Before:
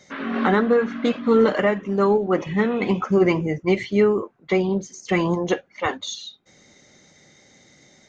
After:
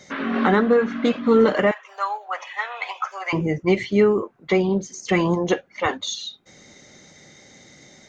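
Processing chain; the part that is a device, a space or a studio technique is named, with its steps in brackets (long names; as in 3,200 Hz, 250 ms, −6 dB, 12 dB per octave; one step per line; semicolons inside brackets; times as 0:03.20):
parallel compression (in parallel at −2.5 dB: downward compressor, threshold −33 dBFS, peak gain reduction 19 dB)
0:01.71–0:03.33: on the sum: Butterworth high-pass 710 Hz 36 dB per octave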